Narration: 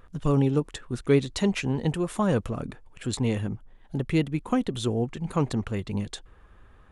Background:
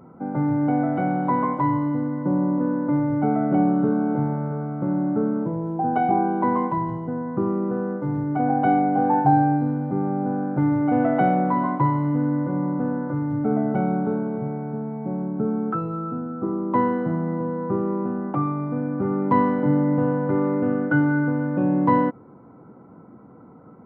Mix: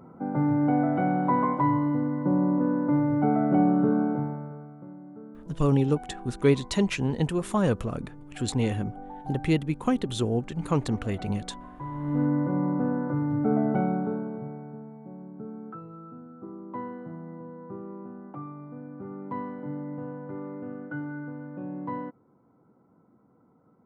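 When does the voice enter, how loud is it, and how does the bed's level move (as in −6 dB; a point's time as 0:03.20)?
5.35 s, 0.0 dB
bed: 0:04.01 −2 dB
0:04.99 −22 dB
0:11.73 −22 dB
0:12.20 −2 dB
0:13.72 −2 dB
0:15.10 −15.5 dB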